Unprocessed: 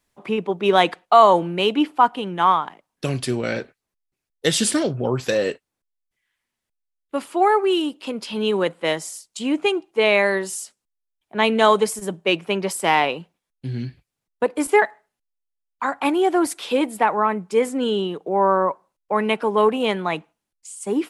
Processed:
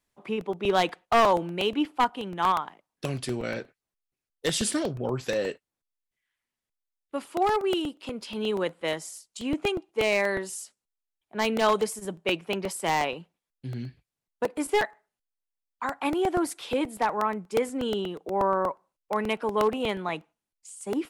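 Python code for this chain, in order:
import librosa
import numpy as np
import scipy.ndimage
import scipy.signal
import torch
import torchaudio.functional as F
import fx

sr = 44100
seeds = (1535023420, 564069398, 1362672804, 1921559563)

y = np.minimum(x, 2.0 * 10.0 ** (-9.5 / 20.0) - x)
y = fx.buffer_crackle(y, sr, first_s=0.41, period_s=0.12, block=64, kind='repeat')
y = y * 10.0 ** (-7.0 / 20.0)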